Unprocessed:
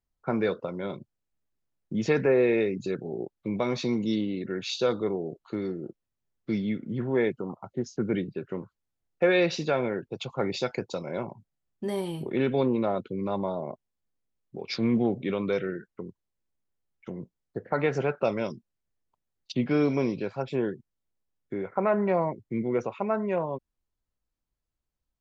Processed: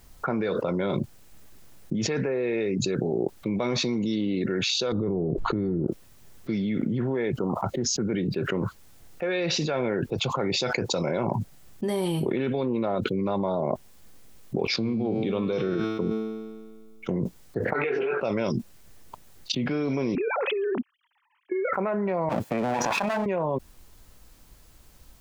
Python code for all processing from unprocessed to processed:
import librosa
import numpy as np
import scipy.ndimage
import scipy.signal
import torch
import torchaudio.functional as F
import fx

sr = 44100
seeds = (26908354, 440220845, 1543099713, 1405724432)

y = fx.chain(x, sr, fx.tilt_eq(slope=-4.5),
    fx.over_compress(threshold_db=-30.0, ratio=-1.0), at=(4.92, 5.87))
y = fx.chain(y, sr, fx.peak_eq(hz=1800.0, db=-11.5, octaves=0.65),
    fx.comb_fb(f0_hz=110.0, decay_s=1.7, harmonics='all', damping=0.0, mix_pct=80), at=(14.76, 17.09))
y = fx.chain(y, sr, fx.over_compress(threshold_db=-30.0, ratio=-1.0),
    fx.cabinet(low_hz=350.0, low_slope=12, high_hz=3400.0, hz=(400.0, 580.0, 900.0, 2500.0), db=(10, -9, -4, 6)),
    fx.detune_double(cents=12), at=(17.73, 18.21))
y = fx.chain(y, sr, fx.sine_speech(),
    fx.over_compress(threshold_db=-34.0, ratio=-0.5), at=(20.15, 21.73))
y = fx.chain(y, sr, fx.lower_of_two(delay_ms=1.2),
    fx.highpass(hz=270.0, slope=12),
    fx.over_compress(threshold_db=-43.0, ratio=-1.0), at=(22.29, 23.26))
y = fx.high_shelf(y, sr, hz=6200.0, db=3.5)
y = fx.env_flatten(y, sr, amount_pct=100)
y = y * librosa.db_to_amplitude(-8.0)